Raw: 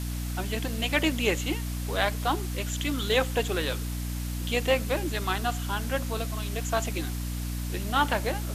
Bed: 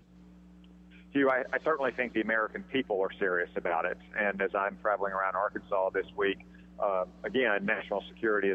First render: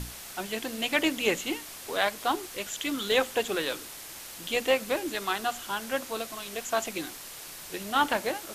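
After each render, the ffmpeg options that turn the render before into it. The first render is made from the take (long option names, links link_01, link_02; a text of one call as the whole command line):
ffmpeg -i in.wav -af "bandreject=frequency=60:width_type=h:width=6,bandreject=frequency=120:width_type=h:width=6,bandreject=frequency=180:width_type=h:width=6,bandreject=frequency=240:width_type=h:width=6,bandreject=frequency=300:width_type=h:width=6" out.wav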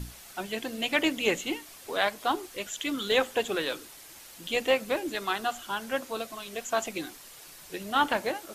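ffmpeg -i in.wav -af "afftdn=noise_reduction=7:noise_floor=-43" out.wav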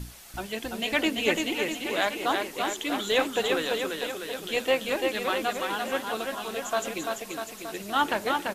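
ffmpeg -i in.wav -af "aecho=1:1:340|646|921.4|1169|1392:0.631|0.398|0.251|0.158|0.1" out.wav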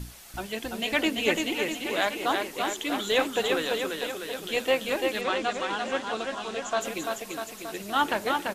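ffmpeg -i in.wav -filter_complex "[0:a]asettb=1/sr,asplit=3[link_01][link_02][link_03];[link_01]atrim=end=5.214[link_04];[link_02]atrim=start=5.21:end=6.81,asetpts=PTS-STARTPTS,afade=type=in:duration=0.004:curve=qsin,afade=type=out:start_time=1.596:duration=0.004:curve=qsin,lowpass=frequency=7800:width=0.5412,lowpass=frequency=7800:width=1.3066[link_05];[link_03]atrim=start=6.806[link_06];[link_04][link_05]acrossfade=duration=0.004:curve1=hsin:curve2=qsin[link_07];[link_07][link_06]acrossfade=duration=0.004:curve1=qsin:curve2=hsin" out.wav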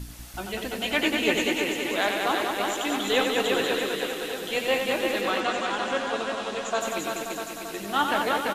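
ffmpeg -i in.wav -filter_complex "[0:a]asplit=2[link_01][link_02];[link_02]adelay=20,volume=-11dB[link_03];[link_01][link_03]amix=inputs=2:normalize=0,aecho=1:1:90.38|192.4:0.501|0.562" out.wav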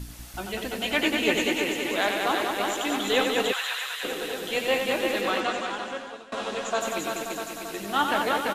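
ffmpeg -i in.wav -filter_complex "[0:a]asplit=3[link_01][link_02][link_03];[link_01]afade=type=out:start_time=3.51:duration=0.02[link_04];[link_02]highpass=frequency=940:width=0.5412,highpass=frequency=940:width=1.3066,afade=type=in:start_time=3.51:duration=0.02,afade=type=out:start_time=4.03:duration=0.02[link_05];[link_03]afade=type=in:start_time=4.03:duration=0.02[link_06];[link_04][link_05][link_06]amix=inputs=3:normalize=0,asplit=2[link_07][link_08];[link_07]atrim=end=6.32,asetpts=PTS-STARTPTS,afade=type=out:start_time=5.39:duration=0.93:silence=0.0749894[link_09];[link_08]atrim=start=6.32,asetpts=PTS-STARTPTS,afade=type=in:duration=0.004:curve=hsin:silence=0.0749894[link_10];[link_09][link_10]concat=n=2:v=0:a=1" out.wav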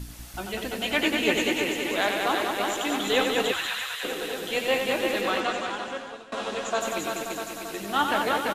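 ffmpeg -i in.wav -filter_complex "[0:a]asplit=4[link_01][link_02][link_03][link_04];[link_02]adelay=145,afreqshift=-120,volume=-22dB[link_05];[link_03]adelay=290,afreqshift=-240,volume=-30.9dB[link_06];[link_04]adelay=435,afreqshift=-360,volume=-39.7dB[link_07];[link_01][link_05][link_06][link_07]amix=inputs=4:normalize=0" out.wav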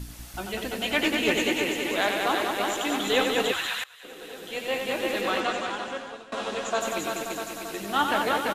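ffmpeg -i in.wav -filter_complex "[0:a]asettb=1/sr,asplit=3[link_01][link_02][link_03];[link_01]atrim=end=1.004[link_04];[link_02]atrim=start=1:end=1.48,asetpts=PTS-STARTPTS,afade=type=in:duration=0.004:curve=qsin,afade=type=out:start_time=0.476:duration=0.004:curve=qsin,volume=16dB,asoftclip=hard,volume=-16dB[link_05];[link_03]atrim=start=1.476[link_06];[link_04][link_05]acrossfade=duration=0.004:curve1=hsin:curve2=qsin[link_07];[link_07][link_06]acrossfade=duration=0.004:curve1=qsin:curve2=hsin,asplit=2[link_08][link_09];[link_08]atrim=end=3.84,asetpts=PTS-STARTPTS,afade=type=out:start_time=3.836:duration=0.004:curve=hsin:silence=0.0891251[link_10];[link_09]atrim=start=3.84,asetpts=PTS-STARTPTS,afade=type=in:duration=1.56:silence=0.0891251[link_11];[link_10][link_11]concat=n=2:v=0:a=1" out.wav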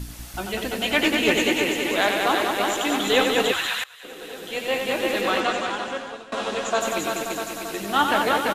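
ffmpeg -i in.wav -af "volume=4dB" out.wav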